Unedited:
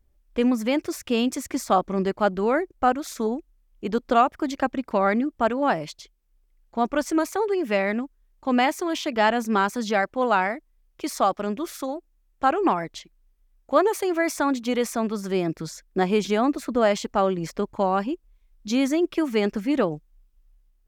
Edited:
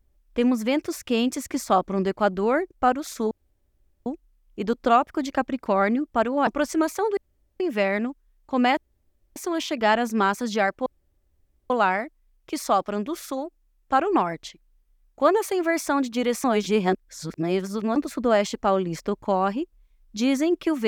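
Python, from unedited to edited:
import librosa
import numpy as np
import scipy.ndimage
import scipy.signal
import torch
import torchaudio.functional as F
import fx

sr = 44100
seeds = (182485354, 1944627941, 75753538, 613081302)

y = fx.edit(x, sr, fx.insert_room_tone(at_s=3.31, length_s=0.75),
    fx.cut(start_s=5.72, length_s=1.12),
    fx.insert_room_tone(at_s=7.54, length_s=0.43),
    fx.insert_room_tone(at_s=8.71, length_s=0.59),
    fx.insert_room_tone(at_s=10.21, length_s=0.84),
    fx.reverse_span(start_s=14.95, length_s=1.52), tone=tone)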